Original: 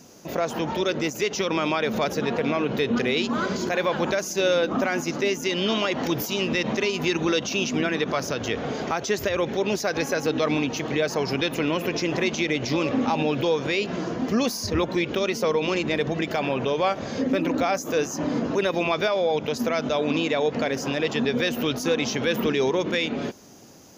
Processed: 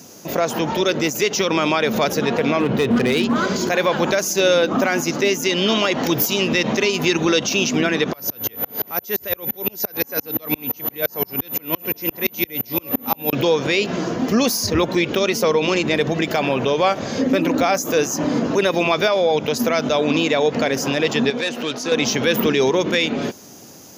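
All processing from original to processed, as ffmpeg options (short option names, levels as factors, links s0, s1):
-filter_complex "[0:a]asettb=1/sr,asplit=3[s0][s1][s2];[s0]atrim=end=2.604[s3];[s1]atrim=start=2.6:end=3.36,asetpts=PTS-STARTPTS,afade=t=in:d=0.004:c=qsin,afade=t=out:st=0.756:d=0.004:c=qsin,bass=f=250:g=5,treble=f=4000:g=-10,aeval=exprs='clip(val(0),-1,0.112)':c=same[s4];[s2]atrim=start=3.356[s5];[s3][s4]acrossfade=d=0.004:c1=hsin:c2=qsin[s6];[s6][s5]acrossfade=d=0.004:c1=qsin:c2=hsin,asettb=1/sr,asplit=3[s7][s8][s9];[s7]atrim=end=8.134[s10];[s8]atrim=start=8.13:end=13.33,asetpts=PTS-STARTPTS,afade=t=in:d=0.004:c=qsin,afade=t=out:st=5.196:d=0.004:c=qsin,aeval=exprs='val(0)+0.0355*sin(2*PI*14000*n/s)':c=same,aeval=exprs='val(0)*pow(10,-36*if(lt(mod(-5.8*n/s,1),2*abs(-5.8)/1000),1-mod(-5.8*n/s,1)/(2*abs(-5.8)/1000),(mod(-5.8*n/s,1)-2*abs(-5.8)/1000)/(1-2*abs(-5.8)/1000))/20)':c=same[s11];[s9]atrim=start=13.326[s12];[s10][s11]acrossfade=d=0.004:c1=hsin:c2=qsin[s13];[s13][s12]acrossfade=d=0.004:c1=qsin:c2=hsin,asettb=1/sr,asplit=3[s14][s15][s16];[s14]atrim=end=21.304[s17];[s15]atrim=start=21.3:end=21.92,asetpts=PTS-STARTPTS,afade=t=in:d=0.004:c=qsin,afade=t=out:st=0.616:d=0.004:c=qsin,lowshelf=f=260:g=-8.5,aeval=exprs='(tanh(11.2*val(0)+0.4)-tanh(0.4))/11.2':c=same,highpass=140,lowpass=6000[s18];[s16]atrim=start=21.916[s19];[s17][s18]acrossfade=d=0.004:c1=hsin:c2=qsin[s20];[s20][s19]acrossfade=d=0.004:c1=qsin:c2=hsin,highpass=73,highshelf=f=7800:g=9.5,volume=1.88"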